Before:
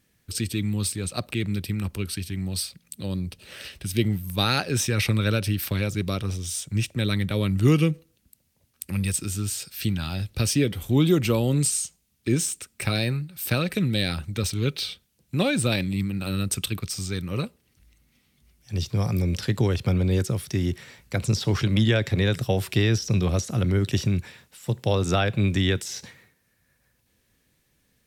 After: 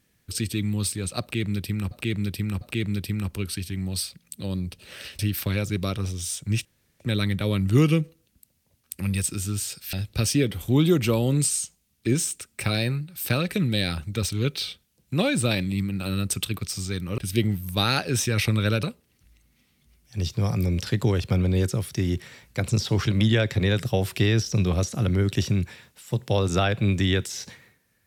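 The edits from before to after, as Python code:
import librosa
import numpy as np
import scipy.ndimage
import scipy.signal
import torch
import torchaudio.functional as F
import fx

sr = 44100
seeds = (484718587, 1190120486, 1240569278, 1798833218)

y = fx.edit(x, sr, fx.repeat(start_s=1.21, length_s=0.7, count=3),
    fx.move(start_s=3.79, length_s=1.65, to_s=17.39),
    fx.insert_room_tone(at_s=6.9, length_s=0.35),
    fx.cut(start_s=9.83, length_s=0.31), tone=tone)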